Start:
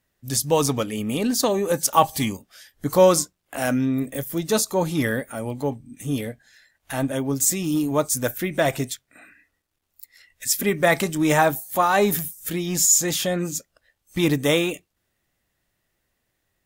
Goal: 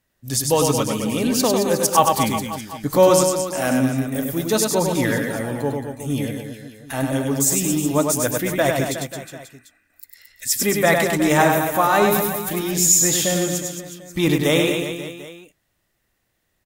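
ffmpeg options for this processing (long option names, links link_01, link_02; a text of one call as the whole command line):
ffmpeg -i in.wav -af "aecho=1:1:100|220|364|536.8|744.2:0.631|0.398|0.251|0.158|0.1,volume=1dB" out.wav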